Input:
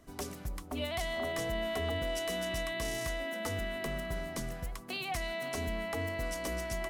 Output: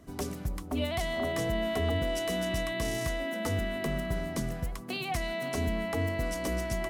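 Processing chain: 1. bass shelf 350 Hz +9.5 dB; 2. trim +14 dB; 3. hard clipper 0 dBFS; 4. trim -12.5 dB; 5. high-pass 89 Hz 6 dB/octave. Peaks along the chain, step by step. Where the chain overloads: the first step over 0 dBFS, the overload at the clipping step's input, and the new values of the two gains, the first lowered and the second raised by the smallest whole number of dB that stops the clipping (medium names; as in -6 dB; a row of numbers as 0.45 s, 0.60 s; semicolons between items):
-19.0 dBFS, -5.0 dBFS, -5.0 dBFS, -17.5 dBFS, -19.5 dBFS; nothing clips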